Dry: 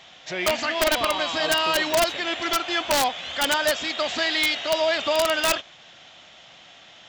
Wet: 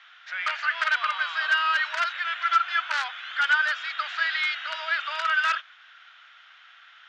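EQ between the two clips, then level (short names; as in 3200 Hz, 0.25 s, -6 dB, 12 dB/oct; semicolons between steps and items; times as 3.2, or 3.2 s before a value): ladder high-pass 1300 Hz, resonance 70%; air absorption 160 m; high shelf 12000 Hz -10 dB; +7.0 dB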